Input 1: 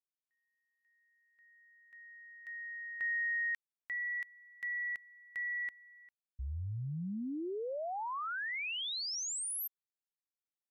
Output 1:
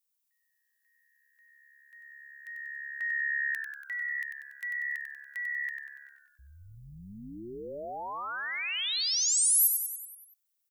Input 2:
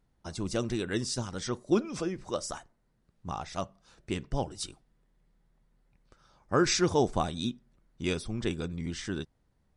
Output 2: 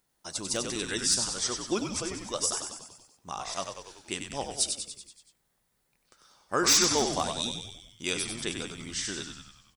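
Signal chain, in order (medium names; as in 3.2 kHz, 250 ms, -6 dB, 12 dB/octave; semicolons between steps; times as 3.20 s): RIAA curve recording; frequency-shifting echo 95 ms, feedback 57%, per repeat -70 Hz, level -6 dB; wavefolder -14.5 dBFS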